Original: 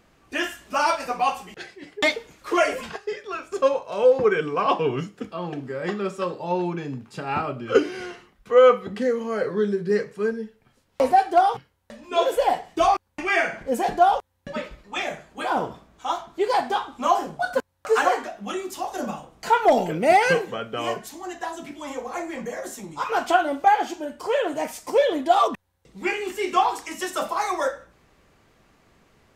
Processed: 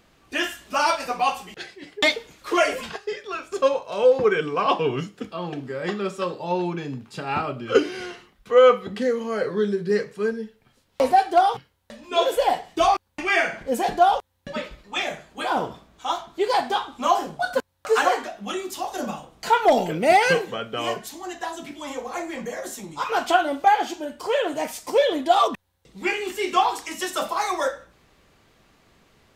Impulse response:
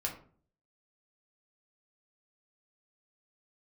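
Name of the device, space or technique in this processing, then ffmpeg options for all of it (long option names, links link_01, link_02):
presence and air boost: -af "equalizer=frequency=3700:width_type=o:width=0.95:gain=4.5,highshelf=frequency=9600:gain=4"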